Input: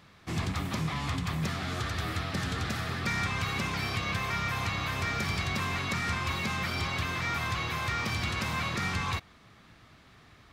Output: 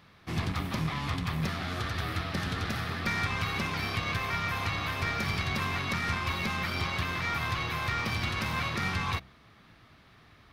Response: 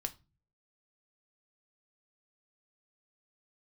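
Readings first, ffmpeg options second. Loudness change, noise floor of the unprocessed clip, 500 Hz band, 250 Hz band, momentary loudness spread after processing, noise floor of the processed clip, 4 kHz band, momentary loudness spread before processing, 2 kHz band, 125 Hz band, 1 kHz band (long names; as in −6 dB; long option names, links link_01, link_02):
0.0 dB, −57 dBFS, 0.0 dB, 0.0 dB, 3 LU, −58 dBFS, 0.0 dB, 3 LU, +0.5 dB, 0.0 dB, +0.5 dB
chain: -af "equalizer=frequency=7400:width_type=o:width=0.52:gain=-8.5,bandreject=frequency=64.76:width_type=h:width=4,bandreject=frequency=129.52:width_type=h:width=4,bandreject=frequency=194.28:width_type=h:width=4,bandreject=frequency=259.04:width_type=h:width=4,bandreject=frequency=323.8:width_type=h:width=4,bandreject=frequency=388.56:width_type=h:width=4,bandreject=frequency=453.32:width_type=h:width=4,bandreject=frequency=518.08:width_type=h:width=4,bandreject=frequency=582.84:width_type=h:width=4,bandreject=frequency=647.6:width_type=h:width=4,bandreject=frequency=712.36:width_type=h:width=4,bandreject=frequency=777.12:width_type=h:width=4,aeval=exprs='0.106*(cos(1*acos(clip(val(0)/0.106,-1,1)))-cos(1*PI/2))+0.0133*(cos(2*acos(clip(val(0)/0.106,-1,1)))-cos(2*PI/2))+0.00668*(cos(3*acos(clip(val(0)/0.106,-1,1)))-cos(3*PI/2))+0.00106*(cos(7*acos(clip(val(0)/0.106,-1,1)))-cos(7*PI/2))':channel_layout=same,volume=2dB"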